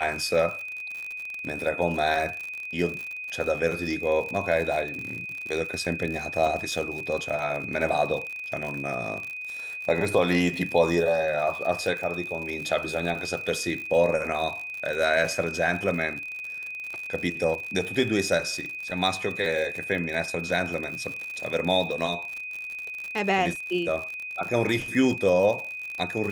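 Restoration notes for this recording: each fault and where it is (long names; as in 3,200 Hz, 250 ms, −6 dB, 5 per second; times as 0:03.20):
surface crackle 66 per second −31 dBFS
whistle 2,500 Hz −33 dBFS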